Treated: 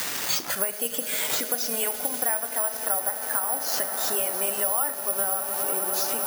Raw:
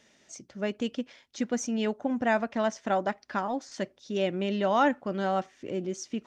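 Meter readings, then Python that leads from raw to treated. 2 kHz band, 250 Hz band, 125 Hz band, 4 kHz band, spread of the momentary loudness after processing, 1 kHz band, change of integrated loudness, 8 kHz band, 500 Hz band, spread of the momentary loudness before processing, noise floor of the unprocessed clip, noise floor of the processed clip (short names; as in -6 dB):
+2.0 dB, -11.5 dB, under -10 dB, +9.5 dB, 2 LU, -1.5 dB, +5.5 dB, +18.0 dB, -2.5 dB, 11 LU, -64 dBFS, -34 dBFS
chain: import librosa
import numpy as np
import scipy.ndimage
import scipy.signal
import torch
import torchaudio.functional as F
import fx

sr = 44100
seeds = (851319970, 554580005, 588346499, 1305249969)

p1 = x + 0.5 * 10.0 ** (-27.5 / 20.0) * np.diff(np.sign(x), prepend=np.sign(x[:1]))
p2 = fx.recorder_agc(p1, sr, target_db=-17.0, rise_db_per_s=22.0, max_gain_db=30)
p3 = scipy.signal.sosfilt(scipy.signal.butter(2, 780.0, 'highpass', fs=sr, output='sos'), p2)
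p4 = fx.noise_reduce_blind(p3, sr, reduce_db=12)
p5 = fx.high_shelf(p4, sr, hz=2400.0, db=-10.5)
p6 = p5 + fx.echo_swell(p5, sr, ms=101, loudest=8, wet_db=-17.5, dry=0)
p7 = fx.room_shoebox(p6, sr, seeds[0], volume_m3=280.0, walls='mixed', distance_m=0.41)
p8 = (np.kron(p7[::4], np.eye(4)[0]) * 4)[:len(p7)]
y = fx.band_squash(p8, sr, depth_pct=100)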